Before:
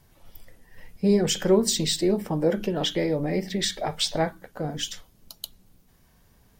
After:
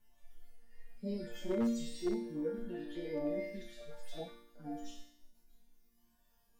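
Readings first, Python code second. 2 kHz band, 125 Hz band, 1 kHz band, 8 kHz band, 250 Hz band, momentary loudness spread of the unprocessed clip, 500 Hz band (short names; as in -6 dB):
-17.0 dB, -20.5 dB, -19.0 dB, -26.0 dB, -12.0 dB, 16 LU, -15.0 dB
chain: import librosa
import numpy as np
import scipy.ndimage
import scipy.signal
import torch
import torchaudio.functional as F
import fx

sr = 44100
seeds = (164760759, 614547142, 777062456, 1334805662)

y = fx.hpss_only(x, sr, part='harmonic')
y = fx.resonator_bank(y, sr, root=58, chord='major', decay_s=0.72)
y = 10.0 ** (-39.5 / 20.0) * (np.abs((y / 10.0 ** (-39.5 / 20.0) + 3.0) % 4.0 - 2.0) - 1.0)
y = y * librosa.db_to_amplitude(13.0)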